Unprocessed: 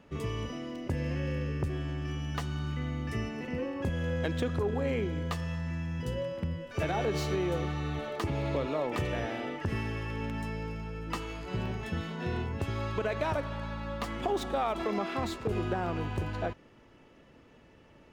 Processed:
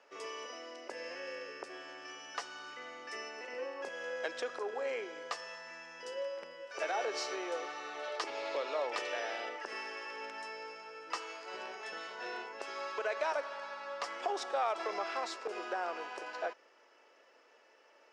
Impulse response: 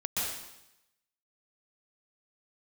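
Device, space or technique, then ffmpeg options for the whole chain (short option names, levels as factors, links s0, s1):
phone speaker on a table: -filter_complex "[0:a]asettb=1/sr,asplit=3[s0][s1][s2];[s0]atrim=end=8.034[s3];[s1]atrim=start=8.03:end=9.49,asetpts=PTS-STARTPTS,afade=t=in:d=0.004:c=qsin,afade=t=out:st=1.456:d=0.004:c=qsin,equalizer=f=3700:w=1.3:g=5[s4];[s2]atrim=start=9.486[s5];[s3][s4]acrossfade=d=0.004:c1=hsin:c2=qsin[s6];[s6][s5]acrossfade=d=0.004:c1=qsin:c2=hsin,highpass=f=470:w=0.5412,highpass=f=470:w=1.3066,equalizer=f=1500:t=q:w=4:g=3,equalizer=f=3500:t=q:w=4:g=-4,equalizer=f=5300:t=q:w=4:g=9,lowpass=f=8600:w=0.5412,lowpass=f=8600:w=1.3066,volume=0.794"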